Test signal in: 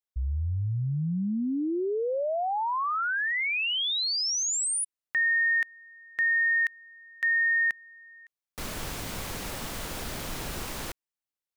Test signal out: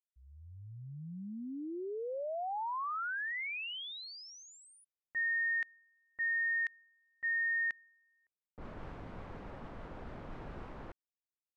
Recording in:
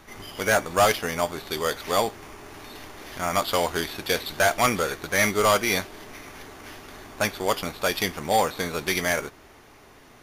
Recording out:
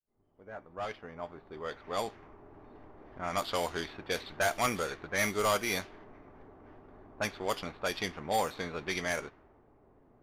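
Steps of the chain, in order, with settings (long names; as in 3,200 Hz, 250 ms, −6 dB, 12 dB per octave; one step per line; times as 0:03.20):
fade in at the beginning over 2.59 s
low-pass that shuts in the quiet parts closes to 630 Hz, open at −18.5 dBFS
level −8.5 dB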